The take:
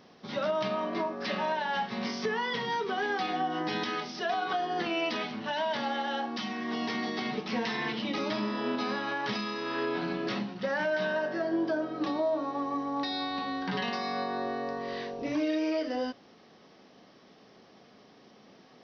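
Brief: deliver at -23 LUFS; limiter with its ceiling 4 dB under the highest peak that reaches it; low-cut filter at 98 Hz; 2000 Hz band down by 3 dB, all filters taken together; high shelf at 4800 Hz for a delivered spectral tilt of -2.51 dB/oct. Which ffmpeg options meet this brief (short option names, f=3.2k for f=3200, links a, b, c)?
-af "highpass=98,equalizer=f=2k:t=o:g=-4.5,highshelf=f=4.8k:g=4,volume=10.5dB,alimiter=limit=-14dB:level=0:latency=1"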